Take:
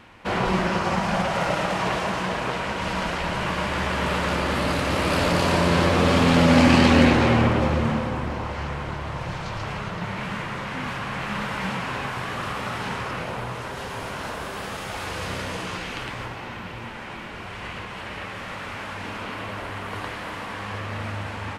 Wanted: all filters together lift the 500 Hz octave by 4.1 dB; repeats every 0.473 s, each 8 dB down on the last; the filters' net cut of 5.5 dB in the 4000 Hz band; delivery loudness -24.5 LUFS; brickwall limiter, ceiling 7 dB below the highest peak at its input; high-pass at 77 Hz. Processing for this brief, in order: HPF 77 Hz; bell 500 Hz +5 dB; bell 4000 Hz -8 dB; limiter -10 dBFS; feedback echo 0.473 s, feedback 40%, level -8 dB

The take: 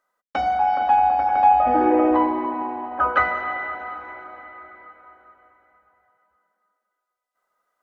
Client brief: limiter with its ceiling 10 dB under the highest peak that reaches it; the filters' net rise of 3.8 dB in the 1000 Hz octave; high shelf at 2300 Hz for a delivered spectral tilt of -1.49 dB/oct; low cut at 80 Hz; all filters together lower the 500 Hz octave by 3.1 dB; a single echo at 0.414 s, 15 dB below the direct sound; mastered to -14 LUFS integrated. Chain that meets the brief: HPF 80 Hz; bell 500 Hz -7.5 dB; bell 1000 Hz +7.5 dB; high shelf 2300 Hz +5.5 dB; limiter -11.5 dBFS; echo 0.414 s -15 dB; gain +6 dB

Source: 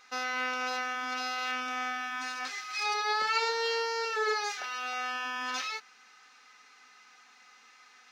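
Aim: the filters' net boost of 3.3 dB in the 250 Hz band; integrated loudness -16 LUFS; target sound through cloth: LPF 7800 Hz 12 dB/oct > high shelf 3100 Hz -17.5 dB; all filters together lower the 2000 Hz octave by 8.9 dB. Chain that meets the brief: LPF 7800 Hz 12 dB/oct; bell 250 Hz +3.5 dB; bell 2000 Hz -5.5 dB; high shelf 3100 Hz -17.5 dB; gain +20.5 dB

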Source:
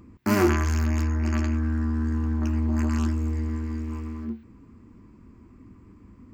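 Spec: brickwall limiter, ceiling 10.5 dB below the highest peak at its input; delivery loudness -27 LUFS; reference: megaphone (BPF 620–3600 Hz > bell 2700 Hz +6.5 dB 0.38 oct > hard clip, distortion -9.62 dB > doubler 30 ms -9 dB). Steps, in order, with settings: limiter -20 dBFS; BPF 620–3600 Hz; bell 2700 Hz +6.5 dB 0.38 oct; hard clip -33 dBFS; doubler 30 ms -9 dB; gain +15 dB

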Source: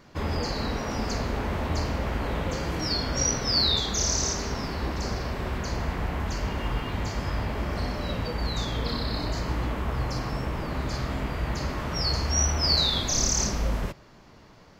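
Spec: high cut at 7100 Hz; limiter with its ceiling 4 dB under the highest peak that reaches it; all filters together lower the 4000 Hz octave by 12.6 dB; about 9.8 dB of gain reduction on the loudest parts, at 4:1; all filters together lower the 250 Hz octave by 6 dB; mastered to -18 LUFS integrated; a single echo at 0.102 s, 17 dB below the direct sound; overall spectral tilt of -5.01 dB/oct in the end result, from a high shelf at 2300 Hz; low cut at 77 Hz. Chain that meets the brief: HPF 77 Hz; LPF 7100 Hz; bell 250 Hz -8 dB; high shelf 2300 Hz -9 dB; bell 4000 Hz -6 dB; compressor 4:1, threshold -39 dBFS; limiter -33 dBFS; echo 0.102 s -17 dB; gain +25 dB

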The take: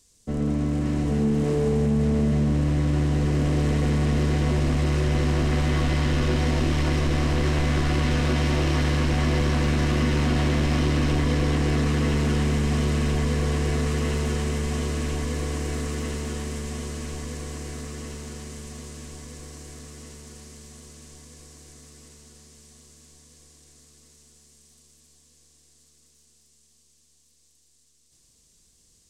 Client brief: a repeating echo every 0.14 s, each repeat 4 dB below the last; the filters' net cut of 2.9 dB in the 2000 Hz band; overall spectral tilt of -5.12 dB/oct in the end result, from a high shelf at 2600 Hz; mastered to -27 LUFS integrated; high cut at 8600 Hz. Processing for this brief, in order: LPF 8600 Hz; bell 2000 Hz -6.5 dB; high shelf 2600 Hz +6.5 dB; feedback echo 0.14 s, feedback 63%, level -4 dB; gain -3 dB

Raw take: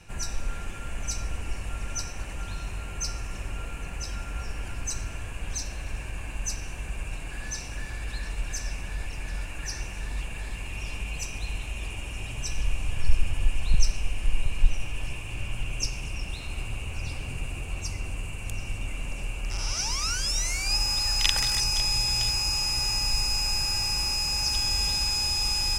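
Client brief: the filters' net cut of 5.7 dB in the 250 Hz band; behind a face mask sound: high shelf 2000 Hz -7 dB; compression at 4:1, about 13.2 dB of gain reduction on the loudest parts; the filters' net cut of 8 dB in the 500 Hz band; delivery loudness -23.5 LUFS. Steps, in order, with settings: bell 250 Hz -7 dB; bell 500 Hz -8 dB; compressor 4:1, threshold -27 dBFS; high shelf 2000 Hz -7 dB; gain +13 dB

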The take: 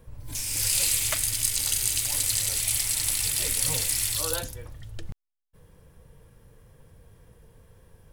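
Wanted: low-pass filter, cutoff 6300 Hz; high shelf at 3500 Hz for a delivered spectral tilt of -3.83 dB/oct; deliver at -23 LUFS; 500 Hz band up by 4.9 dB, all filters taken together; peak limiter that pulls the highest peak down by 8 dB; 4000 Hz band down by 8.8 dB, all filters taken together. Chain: LPF 6300 Hz; bell 500 Hz +5.5 dB; high shelf 3500 Hz -6.5 dB; bell 4000 Hz -5.5 dB; gain +14 dB; limiter -12 dBFS

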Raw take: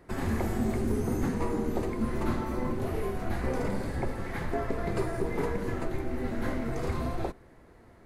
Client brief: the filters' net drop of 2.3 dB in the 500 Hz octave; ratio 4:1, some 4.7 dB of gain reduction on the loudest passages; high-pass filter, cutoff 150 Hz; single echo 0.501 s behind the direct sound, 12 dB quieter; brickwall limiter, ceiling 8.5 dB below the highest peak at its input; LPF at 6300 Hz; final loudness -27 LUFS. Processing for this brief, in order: HPF 150 Hz; LPF 6300 Hz; bell 500 Hz -3 dB; compressor 4:1, threshold -33 dBFS; limiter -31.5 dBFS; echo 0.501 s -12 dB; gain +13 dB

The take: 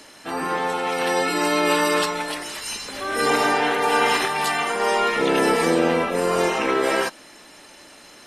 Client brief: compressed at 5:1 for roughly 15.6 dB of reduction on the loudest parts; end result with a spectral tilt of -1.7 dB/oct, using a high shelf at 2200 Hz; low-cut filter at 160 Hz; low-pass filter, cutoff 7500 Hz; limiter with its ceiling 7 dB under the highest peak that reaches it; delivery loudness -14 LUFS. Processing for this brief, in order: HPF 160 Hz; LPF 7500 Hz; high shelf 2200 Hz +6 dB; compressor 5:1, threshold -33 dBFS; gain +22 dB; limiter -5.5 dBFS

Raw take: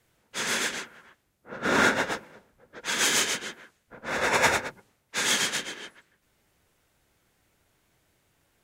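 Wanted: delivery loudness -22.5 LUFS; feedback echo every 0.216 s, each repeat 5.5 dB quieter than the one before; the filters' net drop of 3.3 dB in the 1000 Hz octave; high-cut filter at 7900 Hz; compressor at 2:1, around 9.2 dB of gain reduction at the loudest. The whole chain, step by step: LPF 7900 Hz; bell 1000 Hz -4.5 dB; compressor 2:1, threshold -36 dBFS; feedback echo 0.216 s, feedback 53%, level -5.5 dB; gain +12 dB

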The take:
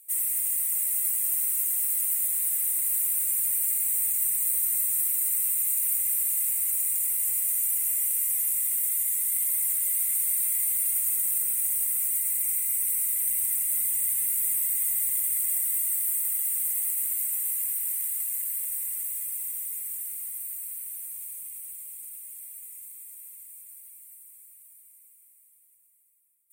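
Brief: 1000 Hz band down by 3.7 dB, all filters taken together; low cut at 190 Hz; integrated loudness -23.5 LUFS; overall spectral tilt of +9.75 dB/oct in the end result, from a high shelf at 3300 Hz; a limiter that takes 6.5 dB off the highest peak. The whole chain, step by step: HPF 190 Hz; bell 1000 Hz -5.5 dB; high shelf 3300 Hz +5 dB; gain -2 dB; limiter -16.5 dBFS

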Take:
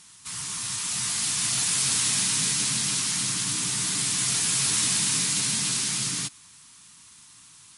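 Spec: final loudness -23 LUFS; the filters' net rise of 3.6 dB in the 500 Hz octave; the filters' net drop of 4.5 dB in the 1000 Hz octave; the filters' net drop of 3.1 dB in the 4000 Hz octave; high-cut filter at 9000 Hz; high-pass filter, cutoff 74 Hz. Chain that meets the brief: HPF 74 Hz; LPF 9000 Hz; bell 500 Hz +6.5 dB; bell 1000 Hz -7 dB; bell 4000 Hz -3.5 dB; gain +3 dB

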